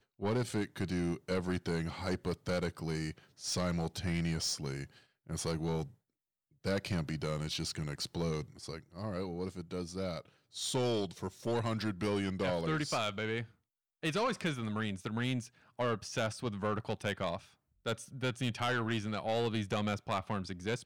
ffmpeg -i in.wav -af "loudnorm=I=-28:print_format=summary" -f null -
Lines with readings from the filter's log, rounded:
Input Integrated:    -36.1 LUFS
Input True Peak:     -25.5 dBTP
Input LRA:             2.7 LU
Input Threshold:     -46.2 LUFS